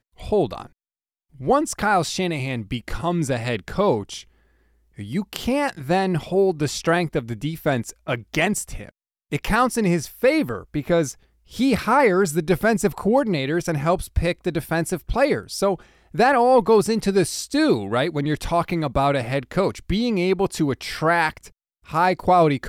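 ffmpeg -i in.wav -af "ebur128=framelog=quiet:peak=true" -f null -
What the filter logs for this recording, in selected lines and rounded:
Integrated loudness:
  I:         -21.7 LUFS
  Threshold: -32.1 LUFS
Loudness range:
  LRA:         4.4 LU
  Threshold: -42.2 LUFS
  LRA low:   -24.4 LUFS
  LRA high:  -20.0 LUFS
True peak:
  Peak:       -6.8 dBFS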